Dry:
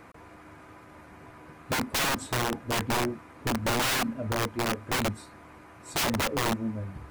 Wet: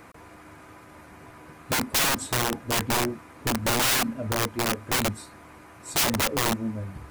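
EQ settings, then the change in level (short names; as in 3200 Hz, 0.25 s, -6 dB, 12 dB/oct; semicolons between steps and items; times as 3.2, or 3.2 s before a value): high shelf 4800 Hz +7 dB; +1.5 dB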